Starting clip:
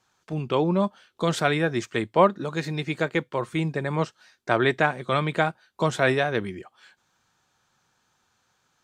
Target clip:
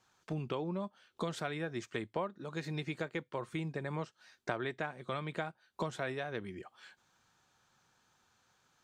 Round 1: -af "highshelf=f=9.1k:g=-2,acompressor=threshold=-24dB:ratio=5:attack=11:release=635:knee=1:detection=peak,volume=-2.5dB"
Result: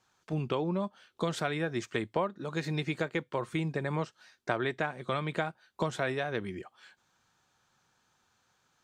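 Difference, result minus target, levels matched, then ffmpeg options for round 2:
compressor: peak gain reduction -6 dB
-af "highshelf=f=9.1k:g=-2,acompressor=threshold=-31.5dB:ratio=5:attack=11:release=635:knee=1:detection=peak,volume=-2.5dB"

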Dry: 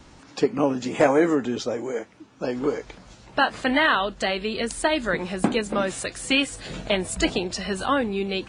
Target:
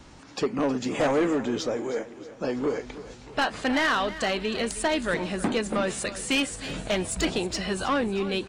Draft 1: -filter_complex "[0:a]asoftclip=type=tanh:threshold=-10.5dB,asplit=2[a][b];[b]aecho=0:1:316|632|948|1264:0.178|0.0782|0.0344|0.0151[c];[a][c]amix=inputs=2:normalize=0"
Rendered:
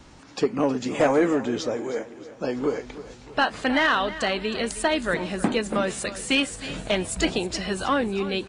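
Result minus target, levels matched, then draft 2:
soft clip: distortion -9 dB
-filter_complex "[0:a]asoftclip=type=tanh:threshold=-18.5dB,asplit=2[a][b];[b]aecho=0:1:316|632|948|1264:0.178|0.0782|0.0344|0.0151[c];[a][c]amix=inputs=2:normalize=0"

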